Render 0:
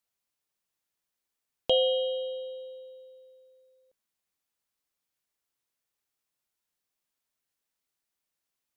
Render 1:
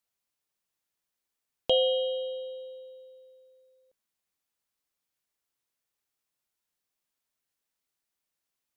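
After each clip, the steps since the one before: nothing audible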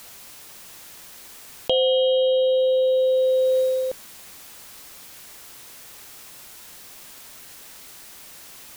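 fast leveller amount 100%; gain +2 dB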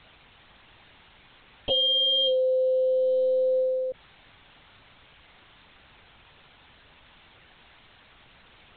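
LPC vocoder at 8 kHz pitch kept; gain -4 dB

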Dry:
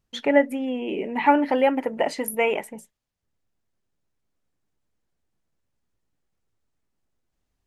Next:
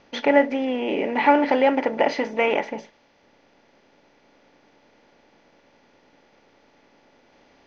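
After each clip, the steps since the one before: per-bin compression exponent 0.6; Chebyshev low-pass 6100 Hz, order 6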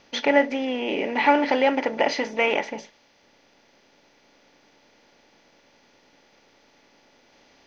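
high shelf 3100 Hz +11.5 dB; gain -2.5 dB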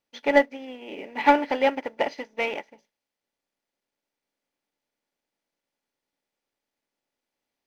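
sample leveller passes 1; requantised 10-bit, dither none; upward expander 2.5:1, over -30 dBFS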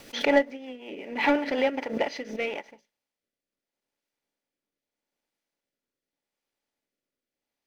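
rotary speaker horn 5.5 Hz, later 0.8 Hz, at 1.52; backwards sustainer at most 99 dB/s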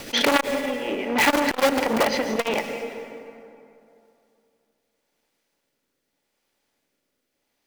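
in parallel at -4.5 dB: wrapped overs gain 22.5 dB; on the sum: plate-style reverb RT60 2.7 s, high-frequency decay 0.55×, pre-delay 0.105 s, DRR 9 dB; core saturation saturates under 2100 Hz; gain +8 dB

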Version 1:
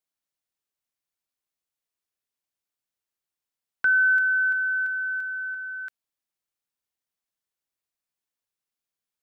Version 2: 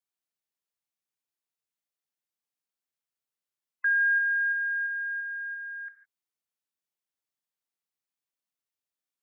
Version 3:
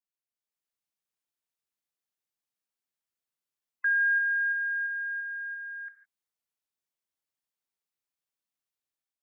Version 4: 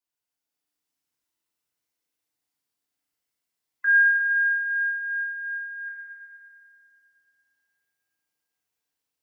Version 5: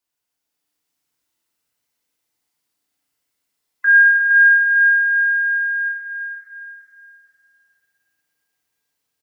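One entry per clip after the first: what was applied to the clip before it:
spectral gate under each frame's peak -30 dB strong; non-linear reverb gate 0.18 s flat, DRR 9 dB; frequency shift +99 Hz; gain -5 dB
AGC gain up to 7.5 dB; gain -8.5 dB
FDN reverb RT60 2.7 s, high-frequency decay 0.95×, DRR -6 dB
feedback echo 0.462 s, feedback 37%, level -8 dB; gain +7 dB

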